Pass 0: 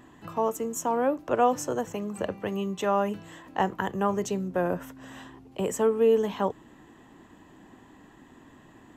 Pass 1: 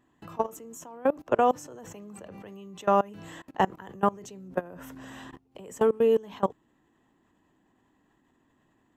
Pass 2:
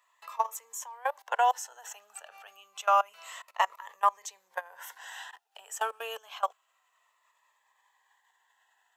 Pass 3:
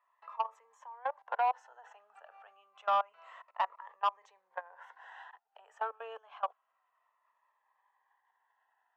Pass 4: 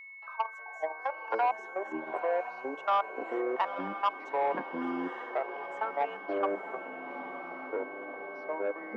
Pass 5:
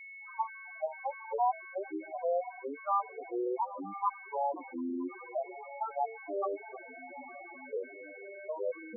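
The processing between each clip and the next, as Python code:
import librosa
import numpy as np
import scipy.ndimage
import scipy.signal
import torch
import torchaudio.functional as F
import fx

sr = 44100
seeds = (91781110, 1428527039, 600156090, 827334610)

y1 = fx.level_steps(x, sr, step_db=24)
y1 = y1 * 10.0 ** (4.0 / 20.0)
y2 = scipy.signal.sosfilt(scipy.signal.cheby2(4, 50, 310.0, 'highpass', fs=sr, output='sos'), y1)
y2 = fx.notch_cascade(y2, sr, direction='falling', hz=0.28)
y2 = y2 * 10.0 ** (6.5 / 20.0)
y3 = scipy.signal.sosfilt(scipy.signal.butter(2, 1200.0, 'lowpass', fs=sr, output='sos'), y2)
y3 = 10.0 ** (-18.5 / 20.0) * np.tanh(y3 / 10.0 ** (-18.5 / 20.0))
y3 = fx.highpass(y3, sr, hz=660.0, slope=6)
y4 = y3 + 10.0 ** (-47.0 / 20.0) * np.sin(2.0 * np.pi * 2200.0 * np.arange(len(y3)) / sr)
y4 = fx.echo_diffused(y4, sr, ms=911, feedback_pct=53, wet_db=-10.0)
y4 = fx.echo_pitch(y4, sr, ms=268, semitones=-6, count=3, db_per_echo=-3.0)
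y4 = y4 * 10.0 ** (1.5 / 20.0)
y5 = fx.spec_topn(y4, sr, count=4)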